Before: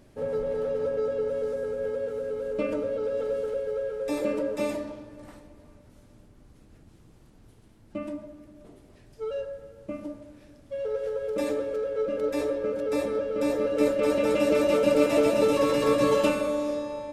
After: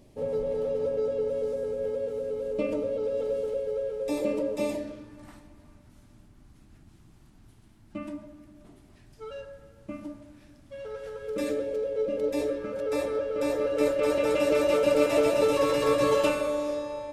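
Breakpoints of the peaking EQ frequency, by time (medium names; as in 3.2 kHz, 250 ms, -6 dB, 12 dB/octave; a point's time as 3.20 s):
peaking EQ -12 dB 0.55 oct
4.71 s 1.5 kHz
5.18 s 490 Hz
11.13 s 490 Hz
11.77 s 1.4 kHz
12.41 s 1.4 kHz
12.85 s 220 Hz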